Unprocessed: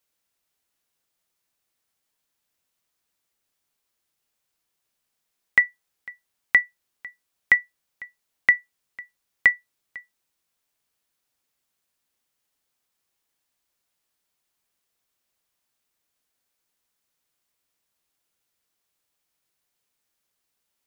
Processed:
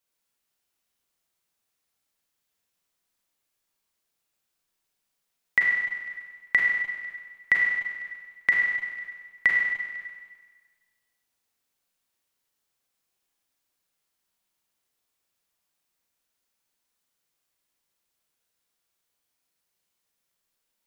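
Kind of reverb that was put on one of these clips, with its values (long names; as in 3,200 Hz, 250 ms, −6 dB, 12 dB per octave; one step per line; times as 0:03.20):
four-comb reverb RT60 1.5 s, combs from 33 ms, DRR −1 dB
level −4.5 dB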